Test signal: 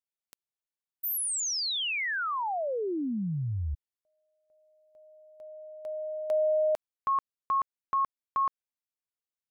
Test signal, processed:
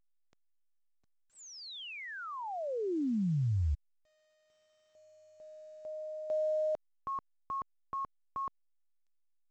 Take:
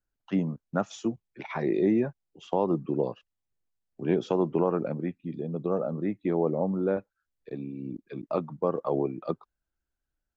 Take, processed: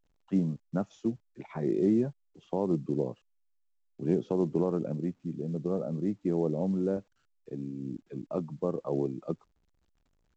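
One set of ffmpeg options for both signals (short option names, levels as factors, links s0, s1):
-filter_complex "[0:a]acrossover=split=4300[s0][s1];[s1]acompressor=threshold=0.0112:ratio=4:attack=1:release=60[s2];[s0][s2]amix=inputs=2:normalize=0,tiltshelf=f=660:g=8,volume=0.473" -ar 16000 -c:a pcm_alaw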